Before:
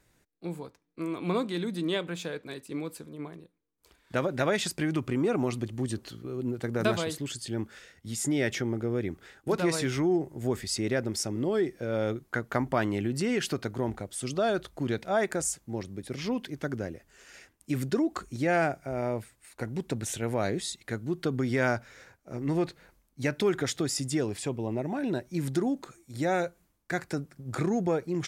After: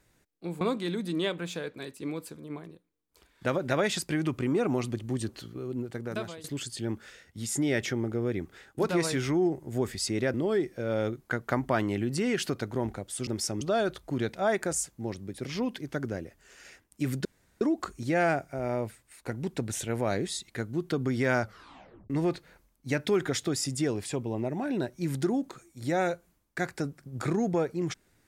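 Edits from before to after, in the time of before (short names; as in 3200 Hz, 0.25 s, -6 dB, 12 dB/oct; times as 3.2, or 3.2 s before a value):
0.61–1.3 cut
6.23–7.13 fade out, to -16 dB
11.03–11.37 move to 14.3
17.94 insert room tone 0.36 s
21.75 tape stop 0.68 s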